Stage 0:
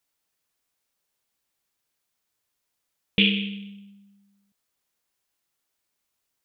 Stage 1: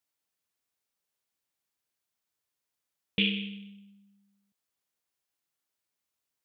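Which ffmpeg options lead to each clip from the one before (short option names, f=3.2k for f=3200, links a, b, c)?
-af "highpass=48,volume=-7dB"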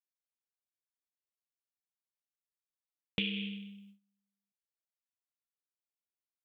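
-af "agate=range=-20dB:threshold=-57dB:ratio=16:detection=peak,acompressor=threshold=-30dB:ratio=6"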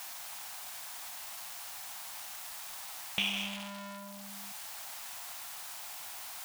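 -af "aeval=exprs='val(0)+0.5*0.02*sgn(val(0))':c=same,lowshelf=f=580:t=q:w=3:g=-9,volume=1dB"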